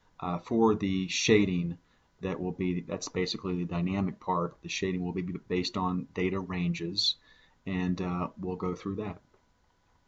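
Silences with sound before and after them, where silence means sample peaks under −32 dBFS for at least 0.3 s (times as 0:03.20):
0:01.72–0:02.23
0:07.12–0:07.67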